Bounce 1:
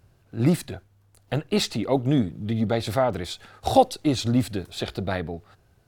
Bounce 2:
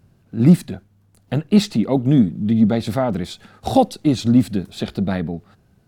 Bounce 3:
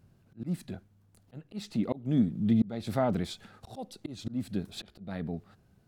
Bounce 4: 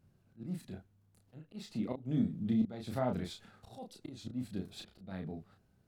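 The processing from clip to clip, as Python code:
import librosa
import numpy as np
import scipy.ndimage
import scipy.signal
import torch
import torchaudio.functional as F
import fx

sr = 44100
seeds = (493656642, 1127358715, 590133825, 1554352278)

y1 = fx.peak_eq(x, sr, hz=200.0, db=13.0, octaves=0.97)
y2 = fx.auto_swell(y1, sr, attack_ms=423.0)
y2 = y2 * 10.0 ** (-7.0 / 20.0)
y3 = fx.doubler(y2, sr, ms=32.0, db=-4)
y3 = y3 * 10.0 ** (-7.5 / 20.0)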